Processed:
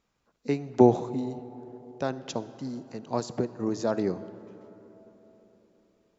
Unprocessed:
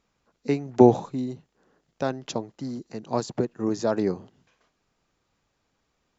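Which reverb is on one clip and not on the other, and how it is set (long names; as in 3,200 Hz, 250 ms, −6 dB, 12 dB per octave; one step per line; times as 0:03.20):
comb and all-pass reverb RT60 4.1 s, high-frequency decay 0.45×, pre-delay 15 ms, DRR 14.5 dB
level −3 dB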